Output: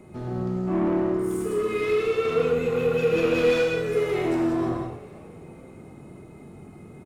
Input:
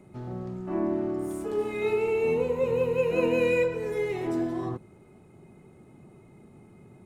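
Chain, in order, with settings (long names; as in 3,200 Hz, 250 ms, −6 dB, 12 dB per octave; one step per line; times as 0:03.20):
time-frequency box erased 0:01.03–0:03.98, 510–1,100 Hz
soft clipping −27.5 dBFS, distortion −11 dB
on a send: echo with shifted repeats 304 ms, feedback 60%, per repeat +48 Hz, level −21 dB
on the sum: reverb whose tail is shaped and stops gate 220 ms flat, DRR −0.5 dB
level +5 dB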